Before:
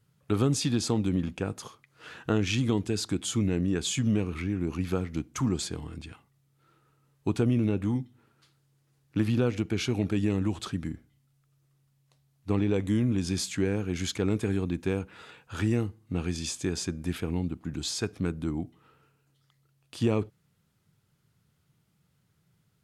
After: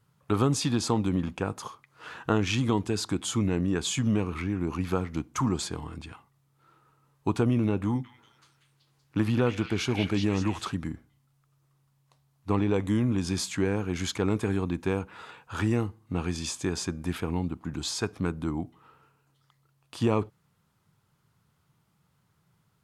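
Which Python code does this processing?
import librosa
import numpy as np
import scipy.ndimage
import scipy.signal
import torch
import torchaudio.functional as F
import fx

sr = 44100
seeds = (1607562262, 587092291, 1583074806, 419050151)

y = fx.echo_stepped(x, sr, ms=189, hz=2400.0, octaves=0.7, feedback_pct=70, wet_db=-0.5, at=(7.85, 10.75))
y = fx.peak_eq(y, sr, hz=1000.0, db=9.0, octaves=0.94)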